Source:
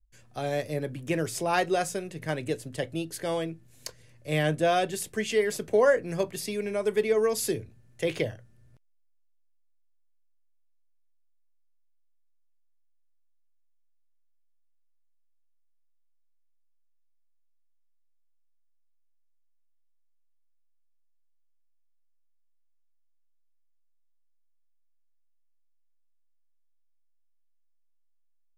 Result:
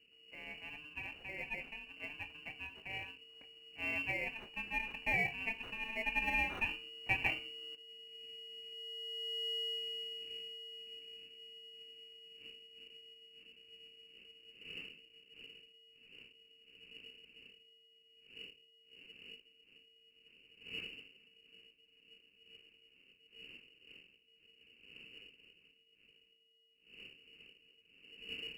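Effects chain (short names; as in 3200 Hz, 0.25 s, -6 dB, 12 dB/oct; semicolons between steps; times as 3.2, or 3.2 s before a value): FFT order left unsorted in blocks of 32 samples; Doppler pass-by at 9.53, 40 m/s, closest 12 m; wind noise 280 Hz -75 dBFS; on a send at -7.5 dB: reverb RT60 0.40 s, pre-delay 3 ms; on the sum: inverted band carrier 2900 Hz; in parallel at -11 dB: sample-and-hold 18×; on the sum: gain +13 dB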